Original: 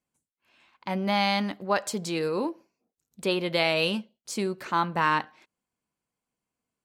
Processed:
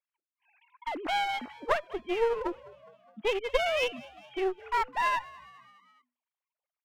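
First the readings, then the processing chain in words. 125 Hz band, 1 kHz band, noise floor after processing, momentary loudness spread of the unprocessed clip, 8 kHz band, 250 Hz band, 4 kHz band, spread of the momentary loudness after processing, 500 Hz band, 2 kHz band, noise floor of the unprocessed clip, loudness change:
below −20 dB, −2.5 dB, below −85 dBFS, 10 LU, −11.0 dB, −10.0 dB, −6.0 dB, 13 LU, −1.0 dB, −3.5 dB, below −85 dBFS, −3.5 dB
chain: three sine waves on the formant tracks
low-shelf EQ 420 Hz −4.5 dB
transient designer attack +5 dB, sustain −11 dB
asymmetric clip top −33 dBFS
echo with shifted repeats 207 ms, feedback 56%, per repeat +61 Hz, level −21 dB

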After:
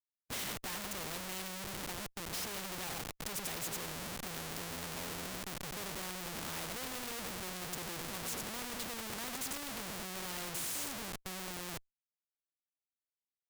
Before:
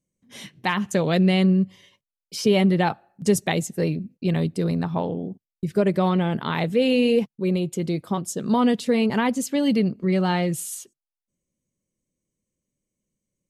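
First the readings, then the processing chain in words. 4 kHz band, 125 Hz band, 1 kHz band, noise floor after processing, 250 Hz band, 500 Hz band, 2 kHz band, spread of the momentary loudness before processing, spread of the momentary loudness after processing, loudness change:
−8.5 dB, −23.5 dB, −15.5 dB, below −85 dBFS, −25.5 dB, −23.0 dB, −11.5 dB, 10 LU, 4 LU, −17.0 dB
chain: slap from a distant wall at 210 metres, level −23 dB
reversed playback
downward compressor 12 to 1, threshold −30 dBFS, peak gain reduction 17.5 dB
reversed playback
repeating echo 93 ms, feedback 24%, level −9.5 dB
comparator with hysteresis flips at −47 dBFS
every bin compressed towards the loudest bin 2 to 1
level +3.5 dB

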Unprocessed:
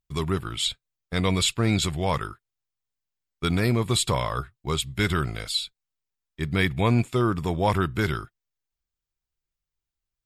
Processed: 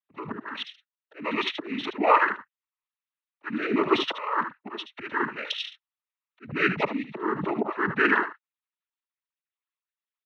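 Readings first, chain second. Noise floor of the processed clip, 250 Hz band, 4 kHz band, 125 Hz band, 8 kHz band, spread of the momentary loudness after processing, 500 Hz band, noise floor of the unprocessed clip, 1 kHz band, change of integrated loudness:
below −85 dBFS, −3.5 dB, −6.0 dB, −17.5 dB, below −20 dB, 15 LU, −1.0 dB, below −85 dBFS, +3.5 dB, −1.5 dB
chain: three sine waves on the formant tracks
dynamic equaliser 1,300 Hz, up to +4 dB, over −35 dBFS, Q 1.5
volume swells 518 ms
single-tap delay 75 ms −10.5 dB
cochlear-implant simulation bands 12
level +3.5 dB

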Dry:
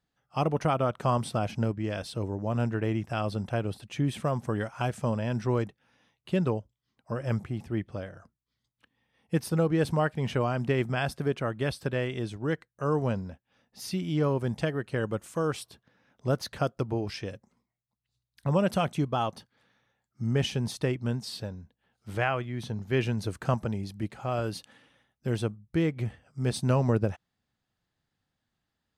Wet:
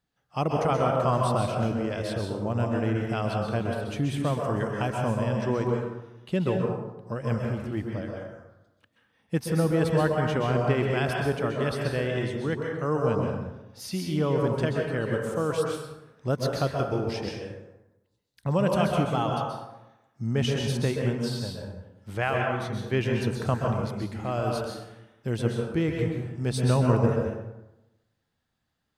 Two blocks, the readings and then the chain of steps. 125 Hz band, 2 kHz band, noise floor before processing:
+2.5 dB, +3.0 dB, −84 dBFS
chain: dense smooth reverb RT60 0.98 s, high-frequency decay 0.55×, pre-delay 115 ms, DRR 0 dB

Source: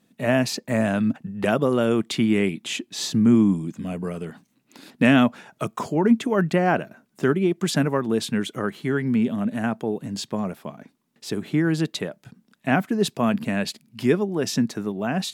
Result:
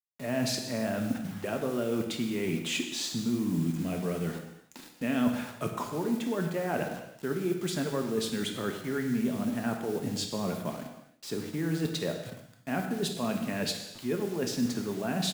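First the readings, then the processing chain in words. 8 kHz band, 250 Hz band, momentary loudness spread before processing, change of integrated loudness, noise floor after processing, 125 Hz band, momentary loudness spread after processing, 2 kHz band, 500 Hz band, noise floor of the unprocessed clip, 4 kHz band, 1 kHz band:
−3.5 dB, −9.0 dB, 12 LU, −8.5 dB, −55 dBFS, −8.0 dB, 7 LU, −10.0 dB, −8.0 dB, −69 dBFS, −4.0 dB, −9.5 dB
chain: high-pass filter 40 Hz 24 dB per octave
dynamic equaliser 450 Hz, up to +4 dB, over −31 dBFS, Q 1.8
reversed playback
downward compressor 8 to 1, threshold −29 dBFS, peak gain reduction 17.5 dB
reversed playback
noise that follows the level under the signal 28 dB
bit reduction 8 bits
on a send: repeating echo 122 ms, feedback 43%, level −22.5 dB
on the sum: reverb whose tail is shaped and stops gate 360 ms falling, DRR 3 dB

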